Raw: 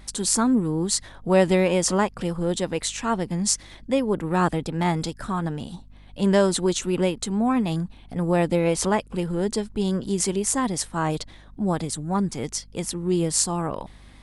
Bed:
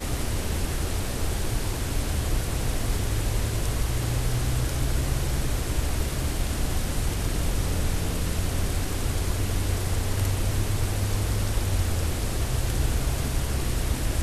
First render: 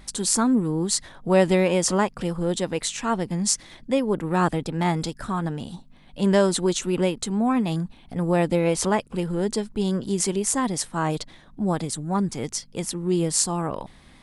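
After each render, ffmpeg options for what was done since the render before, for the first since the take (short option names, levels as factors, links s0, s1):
-af "bandreject=f=50:t=h:w=4,bandreject=f=100:t=h:w=4"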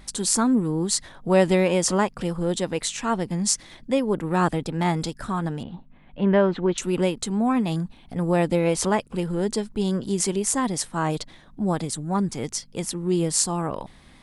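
-filter_complex "[0:a]asettb=1/sr,asplit=3[s0][s1][s2];[s0]atrim=end=5.634[s3];[s1]atrim=start=5.63:end=6.78,asetpts=PTS-STARTPTS,afade=t=in:d=0.004:c=qsin,afade=t=out:st=1.146:d=0.004:c=qsin,lowpass=f=2700:w=0.5412,lowpass=f=2700:w=1.3066[s4];[s2]atrim=start=6.776[s5];[s3][s4]acrossfade=d=0.004:c1=hsin:c2=qsin[s6];[s6][s5]acrossfade=d=0.004:c1=qsin:c2=hsin"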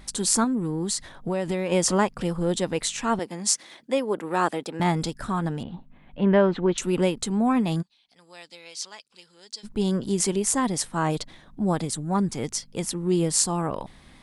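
-filter_complex "[0:a]asettb=1/sr,asplit=3[s0][s1][s2];[s0]atrim=end=0.444[s3];[s1]atrim=start=0.44:end=1.72,asetpts=PTS-STARTPTS,afade=t=in:d=0.004:c=qsin,afade=t=out:st=1.276:d=0.004:c=qsin,acompressor=threshold=0.0708:ratio=4:attack=3.2:release=140:knee=1:detection=peak[s4];[s2]atrim=start=1.716[s5];[s3][s4]acrossfade=d=0.004:c1=hsin:c2=qsin[s6];[s6][s5]acrossfade=d=0.004:c1=qsin:c2=hsin,asettb=1/sr,asplit=3[s7][s8][s9];[s7]atrim=end=3.194[s10];[s8]atrim=start=3.19:end=4.8,asetpts=PTS-STARTPTS,afade=t=in:d=0.004:c=qsin,afade=t=out:st=1.606:d=0.004:c=qsin,highpass=330[s11];[s9]atrim=start=4.796[s12];[s10][s11]acrossfade=d=0.004:c1=hsin:c2=qsin[s13];[s13][s12]acrossfade=d=0.004:c1=qsin:c2=hsin,asplit=3[s14][s15][s16];[s14]afade=t=out:st=7.81:d=0.02[s17];[s15]bandpass=f=4700:t=q:w=2.5,afade=t=in:st=7.81:d=0.02,afade=t=out:st=9.63:d=0.02[s18];[s16]afade=t=in:st=9.63:d=0.02[s19];[s17][s18][s19]amix=inputs=3:normalize=0"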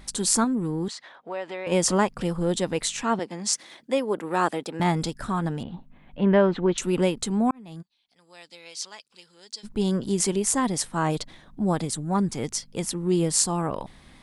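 -filter_complex "[0:a]asettb=1/sr,asplit=3[s0][s1][s2];[s0]atrim=end=0.884[s3];[s1]atrim=start=0.88:end=1.67,asetpts=PTS-STARTPTS,afade=t=in:d=0.004:c=qsin,afade=t=out:st=0.786:d=0.004:c=qsin,highpass=590,lowpass=3400[s4];[s2]atrim=start=1.666[s5];[s3][s4]acrossfade=d=0.004:c1=hsin:c2=qsin[s6];[s6][s5]acrossfade=d=0.004:c1=qsin:c2=hsin,asettb=1/sr,asplit=3[s7][s8][s9];[s7]atrim=end=3.034[s10];[s8]atrim=start=3.03:end=3.53,asetpts=PTS-STARTPTS,afade=t=in:d=0.004:c=qsin,afade=t=out:st=0.496:d=0.004:c=qsin,highpass=120,lowpass=6900[s11];[s9]atrim=start=3.526[s12];[s10][s11]acrossfade=d=0.004:c1=hsin:c2=qsin[s13];[s13][s12]acrossfade=d=0.004:c1=qsin:c2=hsin,asplit=2[s14][s15];[s14]atrim=end=7.51,asetpts=PTS-STARTPTS,afade=t=out:st=7.506:d=0.004:c=hsin[s16];[s15]atrim=start=7.51,asetpts=PTS-STARTPTS,afade=t=in:d=1.17[s17];[s16][s17]concat=n=2:v=0:a=1"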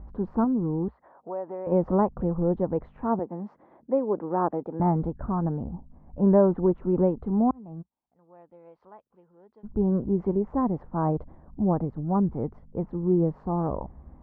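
-af "lowpass=f=1000:w=0.5412,lowpass=f=1000:w=1.3066,equalizer=f=61:t=o:w=0.72:g=14.5"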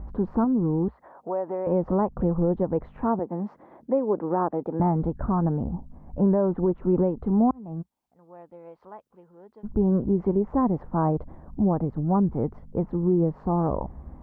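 -filter_complex "[0:a]asplit=2[s0][s1];[s1]acompressor=threshold=0.0316:ratio=6,volume=0.944[s2];[s0][s2]amix=inputs=2:normalize=0,alimiter=limit=0.211:level=0:latency=1:release=228"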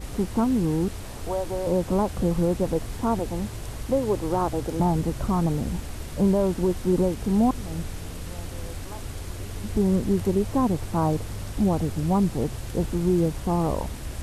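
-filter_complex "[1:a]volume=0.376[s0];[0:a][s0]amix=inputs=2:normalize=0"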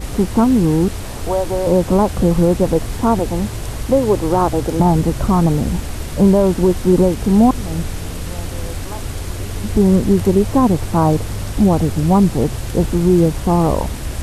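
-af "volume=2.99,alimiter=limit=0.708:level=0:latency=1"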